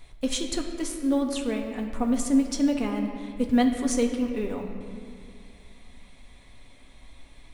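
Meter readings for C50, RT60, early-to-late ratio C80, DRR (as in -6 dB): 5.5 dB, 2.3 s, 6.5 dB, 2.0 dB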